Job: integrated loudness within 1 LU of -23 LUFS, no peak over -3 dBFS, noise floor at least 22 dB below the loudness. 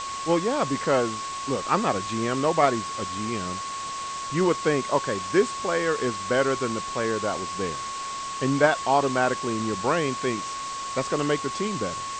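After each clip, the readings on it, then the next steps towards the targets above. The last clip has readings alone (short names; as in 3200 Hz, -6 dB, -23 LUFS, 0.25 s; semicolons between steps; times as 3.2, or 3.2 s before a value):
steady tone 1100 Hz; tone level -31 dBFS; noise floor -33 dBFS; noise floor target -48 dBFS; loudness -25.5 LUFS; peak -6.5 dBFS; loudness target -23.0 LUFS
-> notch 1100 Hz, Q 30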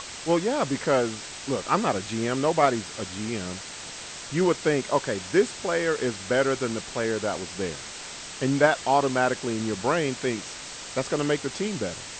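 steady tone none; noise floor -39 dBFS; noise floor target -49 dBFS
-> denoiser 10 dB, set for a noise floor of -39 dBFS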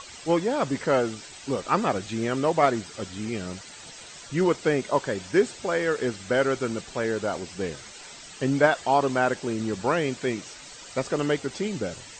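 noise floor -44 dBFS; noise floor target -48 dBFS
-> denoiser 6 dB, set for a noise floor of -44 dBFS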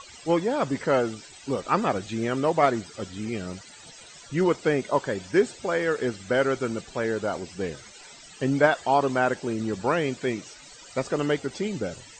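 noise floor -48 dBFS; loudness -26.0 LUFS; peak -7.0 dBFS; loudness target -23.0 LUFS
-> gain +3 dB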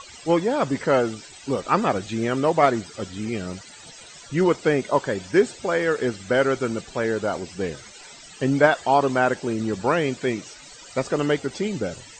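loudness -23.0 LUFS; peak -4.0 dBFS; noise floor -45 dBFS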